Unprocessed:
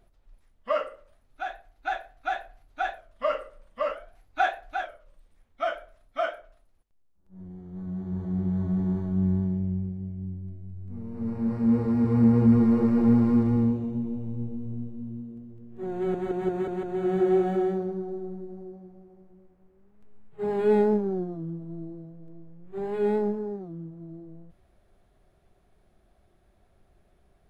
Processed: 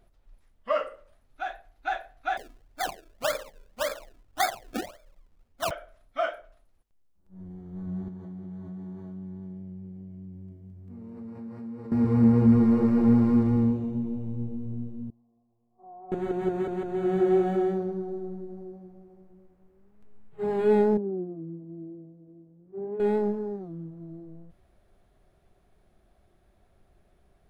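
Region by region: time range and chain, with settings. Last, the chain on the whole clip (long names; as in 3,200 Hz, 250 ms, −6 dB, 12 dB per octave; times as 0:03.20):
0:02.37–0:05.71: low-pass filter 1,100 Hz 6 dB per octave + sample-and-hold swept by an LFO 30× 1.8 Hz
0:08.08–0:11.92: high-pass filter 130 Hz + downward compressor 4 to 1, threshold −39 dBFS
0:15.10–0:16.12: formant resonators in series a + high-frequency loss of the air 430 metres
0:20.97–0:23.00: variable-slope delta modulation 64 kbit/s + resonant band-pass 310 Hz, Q 1.2 + high-frequency loss of the air 300 metres
whole clip: no processing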